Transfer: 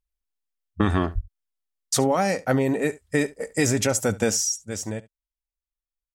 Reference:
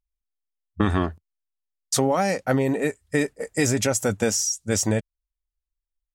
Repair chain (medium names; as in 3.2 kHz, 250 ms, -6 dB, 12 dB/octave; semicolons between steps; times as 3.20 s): 1.14–1.26 s: high-pass 140 Hz 24 dB/octave; inverse comb 70 ms -20.5 dB; 4.65 s: gain correction +8.5 dB